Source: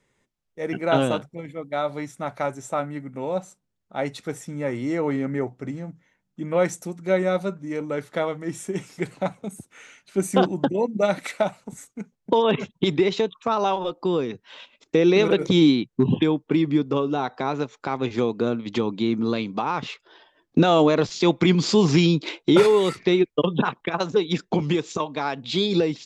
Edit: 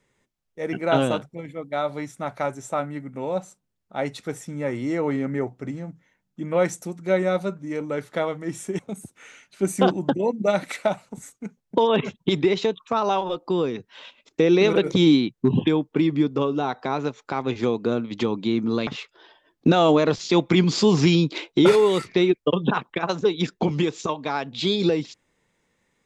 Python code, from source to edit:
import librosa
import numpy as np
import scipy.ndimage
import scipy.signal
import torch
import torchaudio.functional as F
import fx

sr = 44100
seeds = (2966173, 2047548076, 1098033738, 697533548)

y = fx.edit(x, sr, fx.cut(start_s=8.79, length_s=0.55),
    fx.cut(start_s=19.42, length_s=0.36), tone=tone)